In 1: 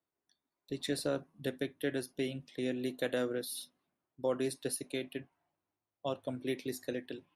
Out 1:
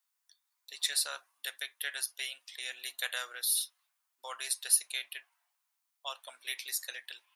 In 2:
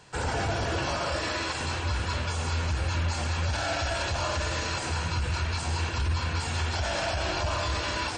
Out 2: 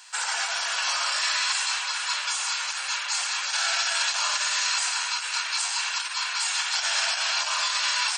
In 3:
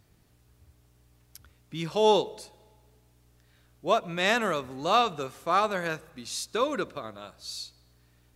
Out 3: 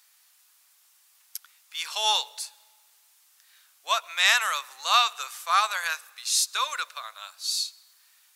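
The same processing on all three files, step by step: high-pass 960 Hz 24 dB/octave; treble shelf 3.4 kHz +11 dB; trim +3 dB

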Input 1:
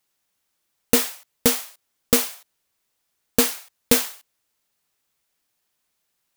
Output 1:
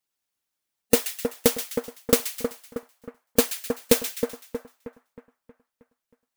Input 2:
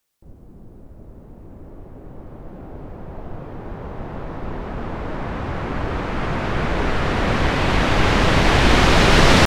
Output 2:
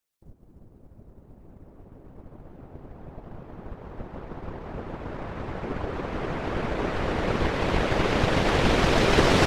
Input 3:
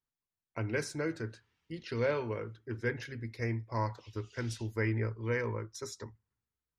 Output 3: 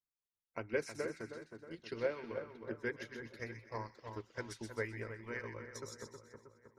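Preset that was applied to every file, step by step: harmonic-percussive split harmonic -11 dB; two-band feedback delay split 1.7 kHz, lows 316 ms, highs 127 ms, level -6 dB; transient shaper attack +4 dB, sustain -3 dB; dynamic bell 450 Hz, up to +6 dB, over -36 dBFS, Q 1.2; trim -6 dB

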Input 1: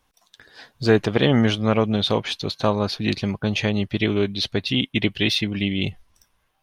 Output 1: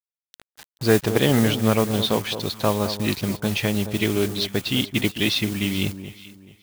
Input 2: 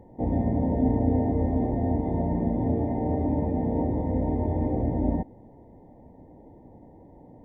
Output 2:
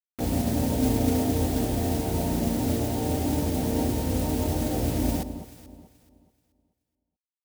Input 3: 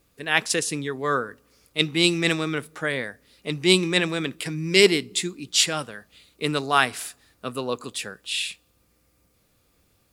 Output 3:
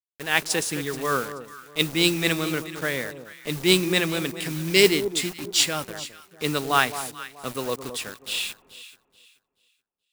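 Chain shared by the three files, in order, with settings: modulation noise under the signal 15 dB; bit crusher 6-bit; on a send: echo whose repeats swap between lows and highs 215 ms, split 1.1 kHz, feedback 51%, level -10 dB; on the sum: trim -1 dB

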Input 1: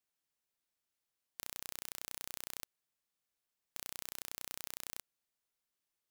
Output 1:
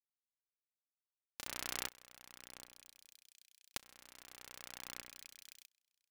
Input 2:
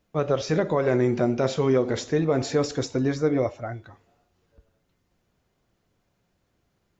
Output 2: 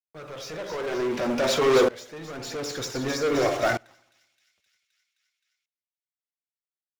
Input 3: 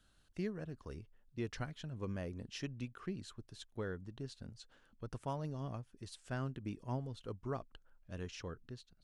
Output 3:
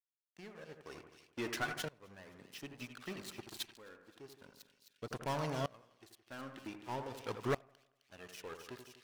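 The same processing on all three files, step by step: in parallel at -2 dB: gain riding within 4 dB 0.5 s; on the sum: low-pass 3.7 kHz 6 dB/octave; de-hum 174.1 Hz, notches 7; crossover distortion -48.5 dBFS; high-pass 110 Hz 12 dB/octave; tilt EQ +2 dB/octave; phaser 0.39 Hz, delay 3.8 ms, feedback 38%; saturation -13.5 dBFS; bass shelf 350 Hz -6 dB; waveshaping leveller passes 3; on a send: two-band feedback delay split 2.3 kHz, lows 83 ms, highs 261 ms, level -9 dB; on the sum: sawtooth tremolo in dB swelling 0.53 Hz, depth 24 dB

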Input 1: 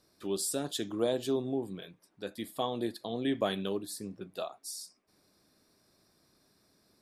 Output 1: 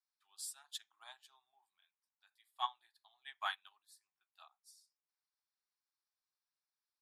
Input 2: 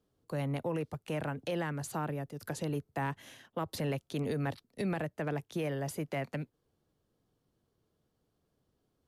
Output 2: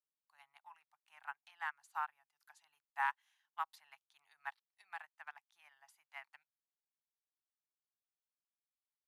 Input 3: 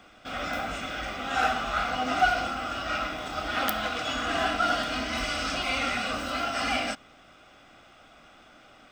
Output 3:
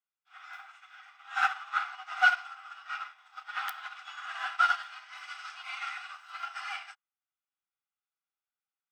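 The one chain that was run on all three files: dynamic bell 1.4 kHz, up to +6 dB, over -42 dBFS, Q 0.92; elliptic high-pass 820 Hz, stop band 40 dB; treble shelf 8.7 kHz -4 dB; Chebyshev shaper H 4 -41 dB, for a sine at -8.5 dBFS; upward expansion 2.5:1, over -47 dBFS

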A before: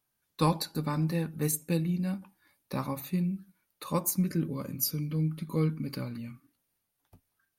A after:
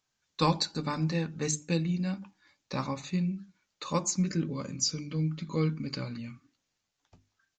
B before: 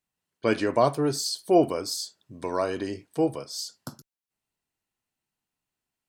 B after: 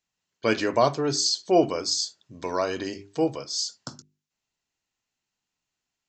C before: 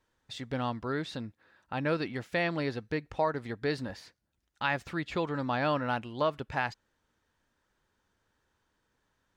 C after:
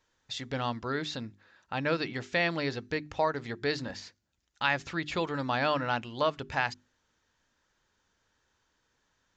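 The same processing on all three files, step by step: peaking EQ 4.5 kHz -2.5 dB 1.9 oct; resampled via 16 kHz; treble shelf 2.5 kHz +11 dB; hum notches 50/100/150/200/250/300/350/400 Hz

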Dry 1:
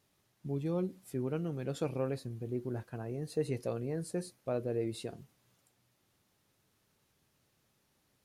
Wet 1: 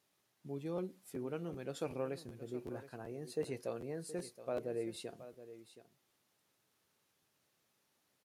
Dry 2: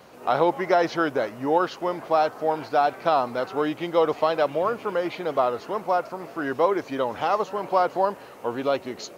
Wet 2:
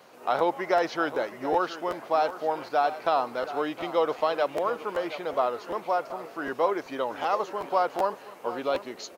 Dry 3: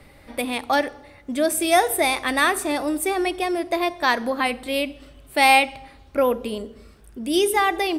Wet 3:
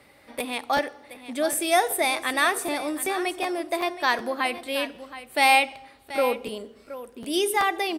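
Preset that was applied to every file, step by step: high-pass 340 Hz 6 dB/octave; delay 722 ms -14 dB; crackling interface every 0.38 s, samples 512, repeat, from 0.38 s; trim -2.5 dB

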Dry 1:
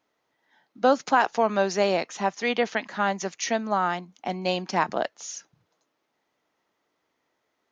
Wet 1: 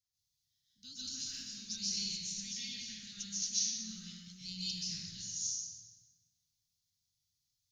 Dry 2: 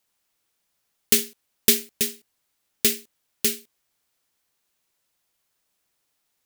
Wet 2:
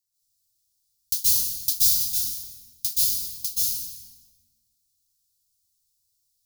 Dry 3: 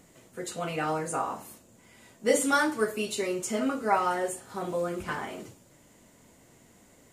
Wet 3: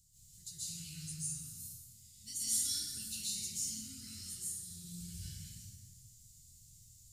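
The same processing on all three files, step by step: Chebyshev band-stop 110–4600 Hz, order 3; dynamic bell 7.9 kHz, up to -7 dB, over -48 dBFS, Q 4.2; plate-style reverb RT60 1.6 s, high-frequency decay 0.65×, pre-delay 115 ms, DRR -10 dB; trim -5.5 dB

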